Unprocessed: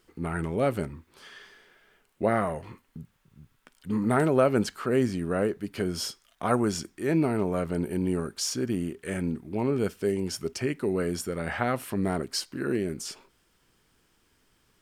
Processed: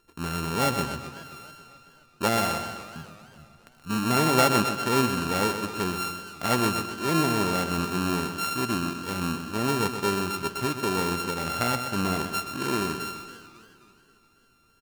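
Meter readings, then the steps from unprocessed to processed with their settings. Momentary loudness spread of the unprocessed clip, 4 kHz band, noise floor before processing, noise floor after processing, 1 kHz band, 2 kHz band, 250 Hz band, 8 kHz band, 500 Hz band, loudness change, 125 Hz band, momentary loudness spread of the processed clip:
12 LU, +7.0 dB, −68 dBFS, −61 dBFS, +7.0 dB, +6.5 dB, 0.0 dB, +4.0 dB, −2.0 dB, +2.0 dB, +0.5 dB, 13 LU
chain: samples sorted by size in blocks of 32 samples
repeating echo 127 ms, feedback 50%, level −9 dB
feedback echo with a swinging delay time 270 ms, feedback 56%, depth 208 cents, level −18.5 dB

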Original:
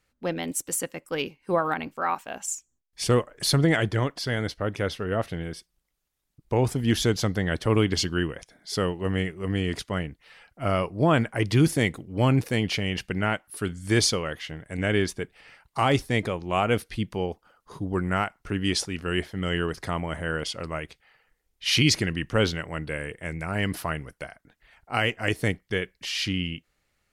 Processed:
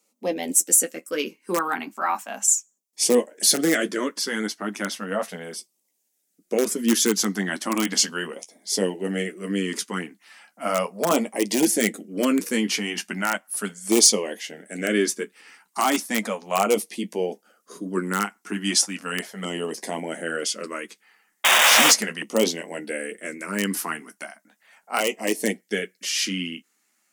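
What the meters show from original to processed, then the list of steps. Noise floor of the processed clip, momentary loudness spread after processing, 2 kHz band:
−73 dBFS, 14 LU, +3.5 dB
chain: sound drawn into the spectrogram noise, 0:21.44–0:21.91, 380–3,800 Hz −17 dBFS
flanger 0.43 Hz, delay 8.6 ms, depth 5.1 ms, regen −31%
in parallel at −10 dB: wrap-around overflow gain 16.5 dB
on the sum: auto-filter notch saw down 0.36 Hz 290–1,700 Hz
elliptic high-pass filter 200 Hz, stop band 40 dB
high shelf with overshoot 5,100 Hz +7.5 dB, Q 1.5
level +5.5 dB

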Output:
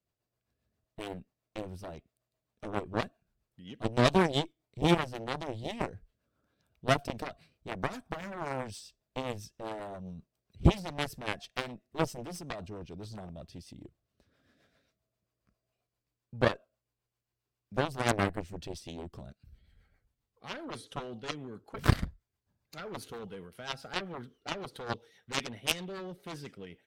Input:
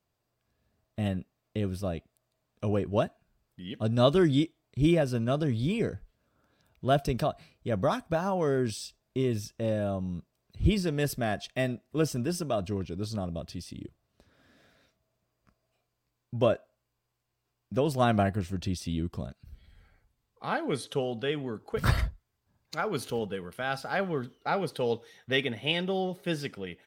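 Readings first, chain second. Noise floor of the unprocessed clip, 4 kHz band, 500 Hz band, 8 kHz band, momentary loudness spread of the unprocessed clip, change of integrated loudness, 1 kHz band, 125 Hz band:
−81 dBFS, −1.5 dB, −6.5 dB, −1.5 dB, 13 LU, −4.5 dB, −2.5 dB, −5.0 dB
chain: rotating-speaker cabinet horn 7.5 Hz
harmonic generator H 4 −15 dB, 5 −25 dB, 6 −18 dB, 7 −12 dB, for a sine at −10.5 dBFS
level +1.5 dB

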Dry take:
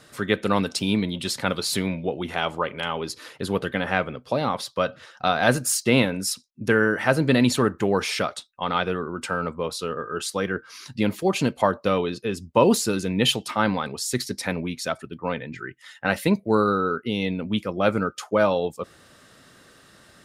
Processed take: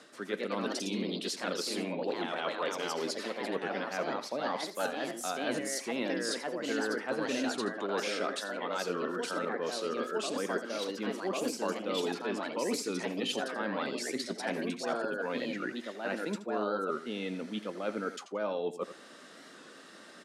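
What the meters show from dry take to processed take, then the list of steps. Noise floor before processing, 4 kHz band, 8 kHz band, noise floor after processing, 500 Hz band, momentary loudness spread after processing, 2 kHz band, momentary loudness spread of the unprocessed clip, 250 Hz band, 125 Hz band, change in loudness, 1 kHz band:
−53 dBFS, −9.0 dB, −10.0 dB, −52 dBFS, −9.0 dB, 4 LU, −10.0 dB, 10 LU, −11.0 dB, −19.0 dB, −10.0 dB, −10.0 dB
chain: reversed playback
downward compressor 5 to 1, threshold −34 dBFS, peak gain reduction 19.5 dB
reversed playback
high-pass filter 230 Hz 24 dB per octave
low-shelf EQ 470 Hz +4 dB
repeating echo 85 ms, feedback 18%, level −13 dB
delay with pitch and tempo change per echo 134 ms, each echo +2 semitones, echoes 2
low-pass filter 8,300 Hz 12 dB per octave
wow of a warped record 45 rpm, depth 100 cents

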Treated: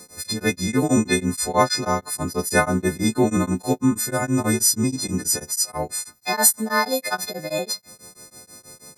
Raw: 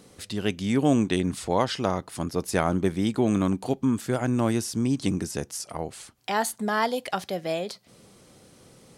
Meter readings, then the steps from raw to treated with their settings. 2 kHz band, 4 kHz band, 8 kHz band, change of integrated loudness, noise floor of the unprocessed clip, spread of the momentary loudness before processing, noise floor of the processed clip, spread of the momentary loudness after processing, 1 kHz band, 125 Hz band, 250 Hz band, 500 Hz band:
+8.0 dB, +8.0 dB, +15.0 dB, +5.0 dB, −56 dBFS, 10 LU, −53 dBFS, 9 LU, +4.5 dB, +2.5 dB, +2.5 dB, +3.0 dB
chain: every partial snapped to a pitch grid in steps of 3 semitones
Butterworth band-reject 3,000 Hz, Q 2.3
tremolo along a rectified sine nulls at 6.2 Hz
level +6 dB

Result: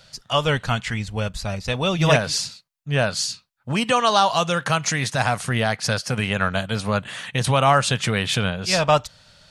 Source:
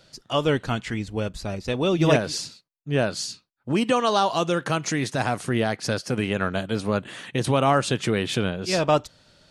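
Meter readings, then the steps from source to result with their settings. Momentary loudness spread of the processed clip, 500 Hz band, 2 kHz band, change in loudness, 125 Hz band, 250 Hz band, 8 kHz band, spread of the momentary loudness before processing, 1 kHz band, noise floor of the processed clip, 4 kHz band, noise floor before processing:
10 LU, +0.5 dB, +5.5 dB, +3.0 dB, +4.0 dB, −1.5 dB, +6.0 dB, 9 LU, +4.5 dB, −66 dBFS, +6.0 dB, −71 dBFS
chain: parametric band 330 Hz −15 dB 0.98 octaves
level +6 dB

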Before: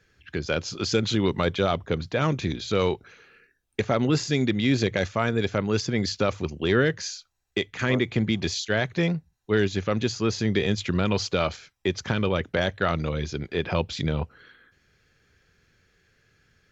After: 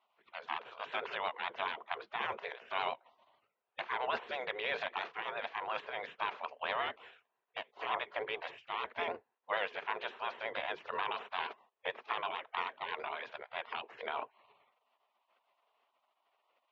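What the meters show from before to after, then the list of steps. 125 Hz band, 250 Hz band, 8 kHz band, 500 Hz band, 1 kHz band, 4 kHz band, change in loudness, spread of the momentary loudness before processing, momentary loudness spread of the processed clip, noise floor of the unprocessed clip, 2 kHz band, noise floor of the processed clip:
−40.0 dB, −32.5 dB, can't be measured, −16.0 dB, −4.0 dB, −12.5 dB, −13.0 dB, 8 LU, 7 LU, −72 dBFS, −8.5 dB, −84 dBFS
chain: gate on every frequency bin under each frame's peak −20 dB weak
loudspeaker in its box 180–2,700 Hz, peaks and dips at 180 Hz −10 dB, 290 Hz −10 dB, 430 Hz +7 dB, 680 Hz +5 dB, 990 Hz +8 dB, 2,100 Hz −3 dB
pitch vibrato 9 Hz 62 cents
level +1 dB

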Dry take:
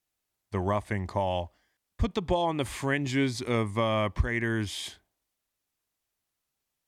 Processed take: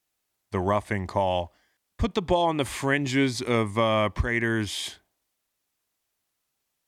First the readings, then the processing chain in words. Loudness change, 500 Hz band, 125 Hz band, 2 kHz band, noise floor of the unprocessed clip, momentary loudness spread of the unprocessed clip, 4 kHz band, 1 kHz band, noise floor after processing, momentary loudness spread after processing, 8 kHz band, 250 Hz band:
+3.5 dB, +4.0 dB, +1.0 dB, +4.5 dB, −84 dBFS, 7 LU, +4.5 dB, +4.5 dB, −80 dBFS, 8 LU, +4.5 dB, +3.0 dB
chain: low-shelf EQ 130 Hz −6 dB
level +4.5 dB

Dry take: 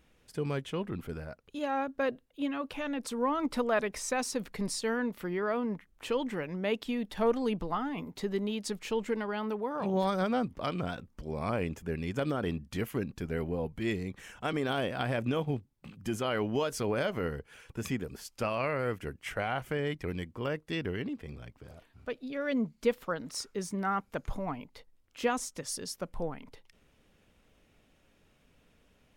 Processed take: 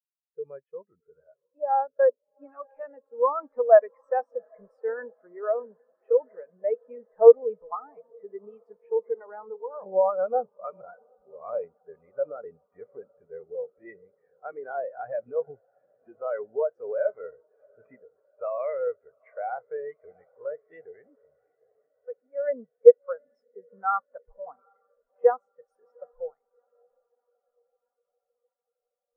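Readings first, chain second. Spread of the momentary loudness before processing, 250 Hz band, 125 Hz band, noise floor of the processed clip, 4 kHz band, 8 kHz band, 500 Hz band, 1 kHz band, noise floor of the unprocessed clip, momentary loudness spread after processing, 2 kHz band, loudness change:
10 LU, below −20 dB, below −25 dB, −84 dBFS, below −40 dB, below −35 dB, +9.5 dB, +4.0 dB, −67 dBFS, 25 LU, −7.0 dB, +8.0 dB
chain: flat-topped bell 1,000 Hz +13.5 dB 2.7 octaves
feedback delay with all-pass diffusion 763 ms, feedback 76%, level −13 dB
every bin expanded away from the loudest bin 2.5 to 1
level +1.5 dB

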